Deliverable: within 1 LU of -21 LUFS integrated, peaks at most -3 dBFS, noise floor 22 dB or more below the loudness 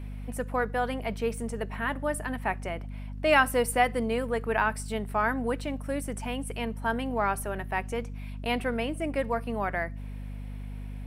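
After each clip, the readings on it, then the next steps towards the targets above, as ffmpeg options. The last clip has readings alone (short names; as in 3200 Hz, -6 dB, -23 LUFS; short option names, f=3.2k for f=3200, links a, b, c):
hum 50 Hz; harmonics up to 250 Hz; hum level -35 dBFS; loudness -29.5 LUFS; peak -9.0 dBFS; loudness target -21.0 LUFS
-> -af "bandreject=f=50:t=h:w=4,bandreject=f=100:t=h:w=4,bandreject=f=150:t=h:w=4,bandreject=f=200:t=h:w=4,bandreject=f=250:t=h:w=4"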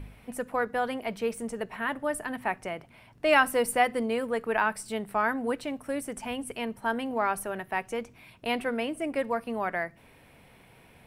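hum none; loudness -30.0 LUFS; peak -9.5 dBFS; loudness target -21.0 LUFS
-> -af "volume=9dB,alimiter=limit=-3dB:level=0:latency=1"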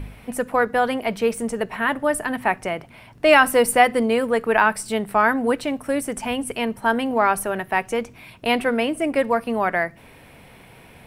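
loudness -21.0 LUFS; peak -3.0 dBFS; noise floor -48 dBFS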